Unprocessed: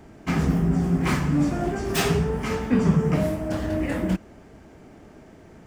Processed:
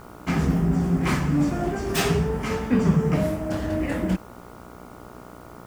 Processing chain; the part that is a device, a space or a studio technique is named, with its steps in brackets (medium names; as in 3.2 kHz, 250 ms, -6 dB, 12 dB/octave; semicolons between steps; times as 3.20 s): video cassette with head-switching buzz (mains buzz 60 Hz, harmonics 24, -45 dBFS -1 dB/octave; white noise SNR 35 dB)